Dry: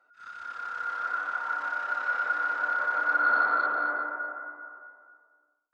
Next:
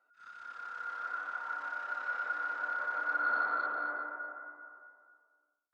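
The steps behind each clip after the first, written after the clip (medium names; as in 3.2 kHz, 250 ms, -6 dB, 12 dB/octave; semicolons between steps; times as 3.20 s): high-pass 96 Hz; trim -7.5 dB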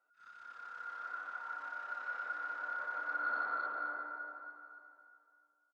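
feedback delay 285 ms, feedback 53%, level -15.5 dB; trim -5 dB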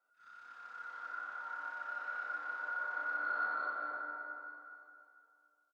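reverse bouncing-ball echo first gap 40 ms, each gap 1.3×, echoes 5; trim -2.5 dB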